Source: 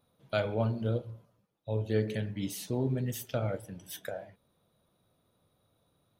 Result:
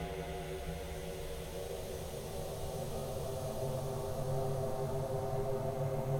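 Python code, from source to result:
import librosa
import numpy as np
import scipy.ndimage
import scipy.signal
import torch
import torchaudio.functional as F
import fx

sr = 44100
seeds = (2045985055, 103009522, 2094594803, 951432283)

y = x * np.sin(2.0 * np.pi * 270.0 * np.arange(len(x)) / sr)
y = fx.power_curve(y, sr, exponent=1.4)
y = fx.paulstretch(y, sr, seeds[0], factor=9.9, window_s=1.0, from_s=2.29)
y = y * librosa.db_to_amplitude(3.0)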